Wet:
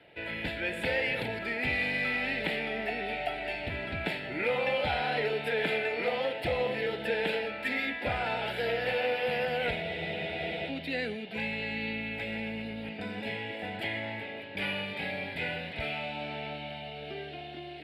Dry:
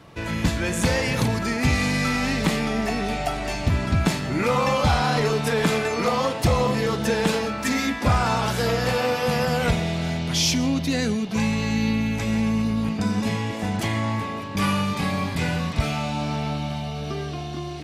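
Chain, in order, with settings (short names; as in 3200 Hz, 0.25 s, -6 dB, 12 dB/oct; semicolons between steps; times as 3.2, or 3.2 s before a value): three-band isolator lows -19 dB, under 440 Hz, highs -17 dB, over 3400 Hz; fixed phaser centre 2700 Hz, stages 4; spectral freeze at 9.85, 0.84 s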